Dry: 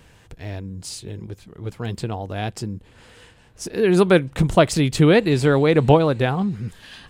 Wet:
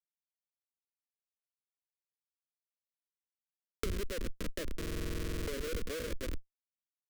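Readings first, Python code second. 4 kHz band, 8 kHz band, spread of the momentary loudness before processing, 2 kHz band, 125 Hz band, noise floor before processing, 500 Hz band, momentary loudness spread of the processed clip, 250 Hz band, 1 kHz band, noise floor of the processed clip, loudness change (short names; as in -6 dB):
-17.0 dB, -15.0 dB, 20 LU, -20.0 dB, -24.5 dB, -52 dBFS, -24.0 dB, 4 LU, -25.0 dB, -28.0 dB, under -85 dBFS, -21.0 dB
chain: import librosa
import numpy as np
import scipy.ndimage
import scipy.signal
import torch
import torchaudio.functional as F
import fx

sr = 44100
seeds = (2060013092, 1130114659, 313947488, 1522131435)

p1 = fx.rattle_buzz(x, sr, strikes_db=-17.0, level_db=-12.0)
p2 = fx.tone_stack(p1, sr, knobs='5-5-5')
p3 = fx.env_flanger(p2, sr, rest_ms=4.4, full_db=-31.5)
p4 = fx.filter_sweep_lowpass(p3, sr, from_hz=5800.0, to_hz=520.0, start_s=0.24, end_s=3.1, q=3.6)
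p5 = fx.graphic_eq_10(p4, sr, hz=(250, 500, 8000), db=(-7, 3, 8))
p6 = p5 + fx.echo_split(p5, sr, split_hz=2400.0, low_ms=100, high_ms=189, feedback_pct=52, wet_db=-11.0, dry=0)
p7 = fx.schmitt(p6, sr, flips_db=-30.5)
p8 = fx.over_compress(p7, sr, threshold_db=-45.0, ratio=-1.0)
p9 = fx.fixed_phaser(p8, sr, hz=330.0, stages=4)
p10 = fx.buffer_glitch(p9, sr, at_s=(4.78,), block=2048, repeats=14)
p11 = fx.band_squash(p10, sr, depth_pct=100)
y = p11 * 10.0 ** (11.5 / 20.0)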